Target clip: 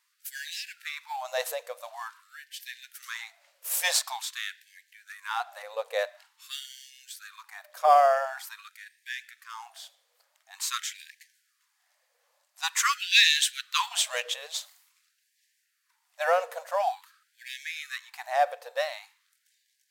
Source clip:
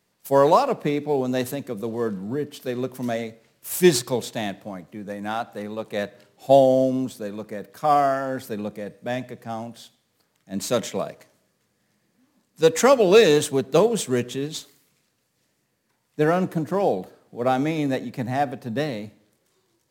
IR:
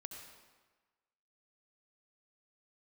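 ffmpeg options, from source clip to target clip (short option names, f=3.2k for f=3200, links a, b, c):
-filter_complex "[0:a]asettb=1/sr,asplit=3[a][b][c];[a]atrim=end=13.024[d];[b]atrim=start=13.02:end=14.34,asetpts=PTS-STARTPTS,afade=t=in:d=0.004:c=qsin,afade=t=out:st=1.316:d=0.004:c=qsin,equalizer=f=3.3k:w=0.98:g=7.5[e];[c]atrim=start=14.336[f];[d][e]acrossfade=d=0.004:c1=hsin:c2=qsin[g];[g][f]acrossfade=d=0.004:c1=qsin:c2=hsin,afftfilt=real='re*gte(b*sr/1024,460*pow(1600/460,0.5+0.5*sin(2*PI*0.47*pts/sr)))':imag='im*gte(b*sr/1024,460*pow(1600/460,0.5+0.5*sin(2*PI*0.47*pts/sr)))':win_size=1024:overlap=0.75"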